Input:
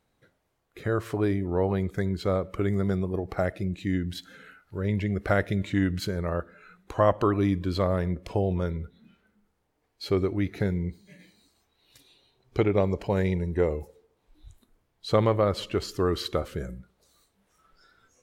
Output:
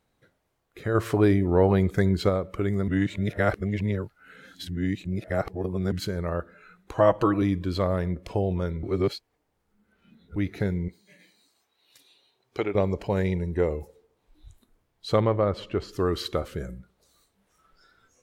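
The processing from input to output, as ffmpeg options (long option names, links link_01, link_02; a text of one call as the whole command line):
ffmpeg -i in.wav -filter_complex "[0:a]asplit=3[link_01][link_02][link_03];[link_01]afade=type=out:start_time=0.94:duration=0.02[link_04];[link_02]acontrast=44,afade=type=in:start_time=0.94:duration=0.02,afade=type=out:start_time=2.28:duration=0.02[link_05];[link_03]afade=type=in:start_time=2.28:duration=0.02[link_06];[link_04][link_05][link_06]amix=inputs=3:normalize=0,asettb=1/sr,asplit=3[link_07][link_08][link_09];[link_07]atrim=end=6.974[link_10];[link_08]atrim=start=6.97:end=7.42,asetpts=PTS-STARTPTS,afade=type=in:duration=0.004:curve=qsin,afade=type=out:start_time=0.446:duration=0.004:curve=qsin,aecho=1:1:6.2:0.65,atrim=end_sample=19845[link_11];[link_09]atrim=start=7.416[link_12];[link_10][link_11]acrossfade=duration=0.004:curve1=hsin:curve2=qsin[link_13];[link_13][link_12]acrossfade=duration=0.004:curve1=qsin:curve2=hsin,asettb=1/sr,asplit=3[link_14][link_15][link_16];[link_14]atrim=end=10.884[link_17];[link_15]atrim=start=10.88:end=12.75,asetpts=PTS-STARTPTS,afade=type=in:duration=0.004:curve=qsin,afade=type=out:start_time=1.866:duration=0.004:curve=qsin,highpass=frequency=480:poles=1[link_18];[link_16]atrim=start=12.746[link_19];[link_17][link_18]acrossfade=duration=0.004:curve1=hsin:curve2=qsin[link_20];[link_20][link_19]acrossfade=duration=0.004:curve1=qsin:curve2=hsin,asettb=1/sr,asplit=3[link_21][link_22][link_23];[link_21]atrim=end=15.204[link_24];[link_22]atrim=start=15.2:end=15.93,asetpts=PTS-STARTPTS,afade=type=in:duration=0.004:curve=qsin,afade=type=out:start_time=0.726:duration=0.004:curve=qsin,lowpass=frequency=2000:poles=1[link_25];[link_23]atrim=start=15.926[link_26];[link_24][link_25]acrossfade=duration=0.004:curve1=hsin:curve2=qsin[link_27];[link_27][link_26]acrossfade=duration=0.004:curve1=qsin:curve2=hsin,asplit=5[link_28][link_29][link_30][link_31][link_32];[link_28]atrim=end=2.882[link_33];[link_29]atrim=start=2.878:end=5.922,asetpts=PTS-STARTPTS,areverse[link_34];[link_30]atrim=start=5.918:end=8.832[link_35];[link_31]atrim=start=8.828:end=10.362,asetpts=PTS-STARTPTS,areverse[link_36];[link_32]atrim=start=10.358[link_37];[link_33][link_34]acrossfade=duration=0.004:curve1=hsin:curve2=hsin[link_38];[link_38][link_35]acrossfade=duration=0.004:curve1=hsin:curve2=hsin[link_39];[link_39][link_36]acrossfade=duration=0.004:curve1=hsin:curve2=hsin[link_40];[link_40][link_37]acrossfade=duration=0.004:curve1=hsin:curve2=hsin" out.wav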